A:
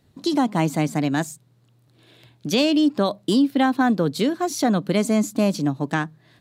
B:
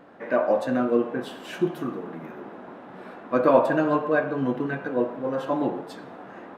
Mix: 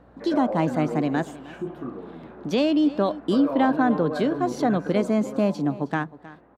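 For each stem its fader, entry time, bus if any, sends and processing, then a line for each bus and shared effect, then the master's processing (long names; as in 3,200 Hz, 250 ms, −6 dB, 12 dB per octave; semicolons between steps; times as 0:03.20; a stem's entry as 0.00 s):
+1.0 dB, 0.00 s, no send, echo send −18 dB, no processing
0:04.93 −2.5 dB → 0:05.62 −12.5 dB, 0.00 s, no send, no echo send, low-shelf EQ 150 Hz +9.5 dB; brickwall limiter −16.5 dBFS, peak gain reduction 11 dB; mains hum 60 Hz, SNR 20 dB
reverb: not used
echo: single-tap delay 314 ms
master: low-pass filter 1,200 Hz 6 dB per octave; low-shelf EQ 220 Hz −7.5 dB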